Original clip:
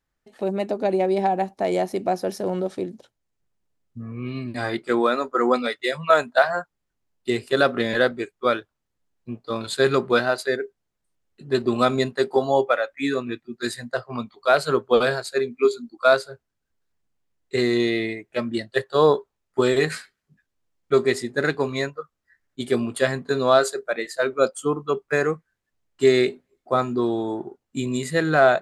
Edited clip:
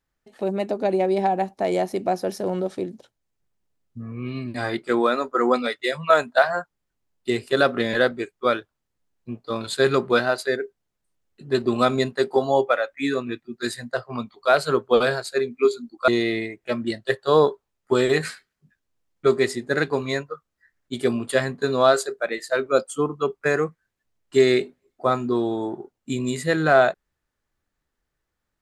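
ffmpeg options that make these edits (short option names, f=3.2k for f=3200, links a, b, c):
-filter_complex "[0:a]asplit=2[a][b];[a]atrim=end=16.082[c];[b]atrim=start=17.748[d];[c][d]acrossfade=d=0.004:c1=hsin:c2=hsin"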